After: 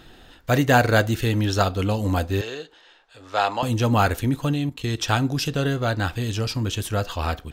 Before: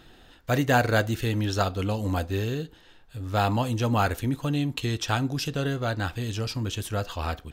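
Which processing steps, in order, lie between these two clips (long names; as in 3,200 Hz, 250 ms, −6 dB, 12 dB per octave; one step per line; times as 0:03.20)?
0:02.41–0:03.63: three-way crossover with the lows and the highs turned down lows −23 dB, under 410 Hz, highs −22 dB, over 7,900 Hz
0:04.53–0:04.98: output level in coarse steps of 14 dB
level +4.5 dB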